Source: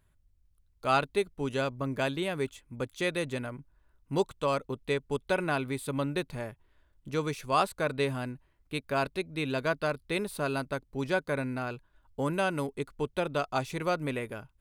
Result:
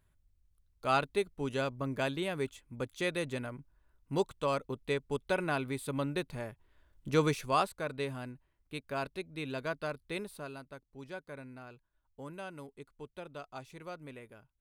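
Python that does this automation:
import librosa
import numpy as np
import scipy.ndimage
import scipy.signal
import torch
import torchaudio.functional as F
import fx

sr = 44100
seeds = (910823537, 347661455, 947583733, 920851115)

y = fx.gain(x, sr, db=fx.line((6.49, -3.0), (7.24, 4.0), (7.78, -7.0), (10.18, -7.0), (10.59, -15.0)))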